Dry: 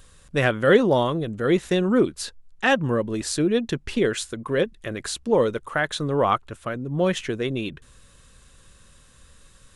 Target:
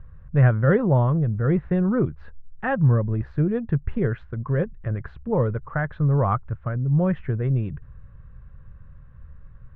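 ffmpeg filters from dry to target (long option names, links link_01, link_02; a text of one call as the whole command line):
ffmpeg -i in.wav -af "lowpass=frequency=1700:width=0.5412,lowpass=frequency=1700:width=1.3066,lowshelf=frequency=190:width_type=q:width=1.5:gain=12.5,volume=-3dB" out.wav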